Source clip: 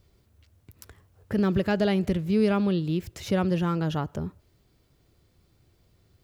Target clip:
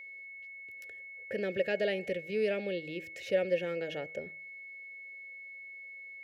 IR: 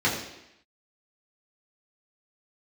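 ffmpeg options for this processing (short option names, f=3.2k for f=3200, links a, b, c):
-filter_complex "[0:a]asplit=3[a][b][c];[a]bandpass=f=530:t=q:w=8,volume=0dB[d];[b]bandpass=f=1.84k:t=q:w=8,volume=-6dB[e];[c]bandpass=f=2.48k:t=q:w=8,volume=-9dB[f];[d][e][f]amix=inputs=3:normalize=0,aemphasis=mode=production:type=75kf,bandreject=f=160.5:t=h:w=4,bandreject=f=321:t=h:w=4,bandreject=f=481.5:t=h:w=4,bandreject=f=642:t=h:w=4,bandreject=f=802.5:t=h:w=4,aeval=exprs='val(0)+0.00316*sin(2*PI*2200*n/s)':c=same,volume=5.5dB"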